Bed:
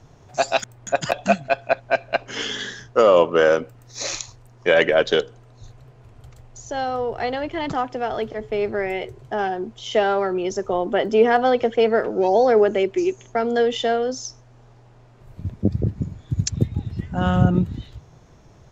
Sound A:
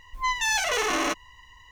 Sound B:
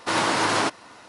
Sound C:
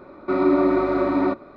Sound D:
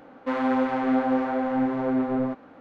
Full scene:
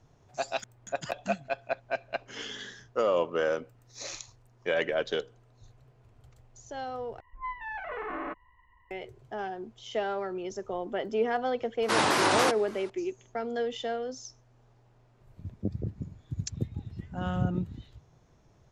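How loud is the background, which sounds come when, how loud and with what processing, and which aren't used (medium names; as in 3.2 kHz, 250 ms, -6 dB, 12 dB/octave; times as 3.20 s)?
bed -12 dB
7.20 s: replace with A -9 dB + low-pass 1.8 kHz 24 dB/octave
11.82 s: add B -2.5 dB + vibrato with a chosen wave saw down 3.5 Hz, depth 250 cents
not used: C, D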